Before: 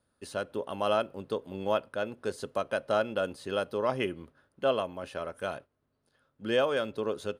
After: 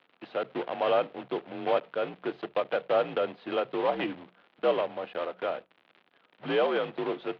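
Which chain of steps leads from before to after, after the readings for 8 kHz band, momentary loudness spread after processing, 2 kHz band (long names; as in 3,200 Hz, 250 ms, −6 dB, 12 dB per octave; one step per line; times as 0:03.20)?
below −20 dB, 9 LU, 0.0 dB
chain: one scale factor per block 3 bits
parametric band 760 Hz +9.5 dB 0.44 octaves
mains-hum notches 50/100/150/200/250 Hz
in parallel at −2.5 dB: brickwall limiter −22 dBFS, peak gain reduction 10.5 dB
on the sum: surface crackle 110 per second −35 dBFS
single-sideband voice off tune −66 Hz 260–3,500 Hz
level −4 dB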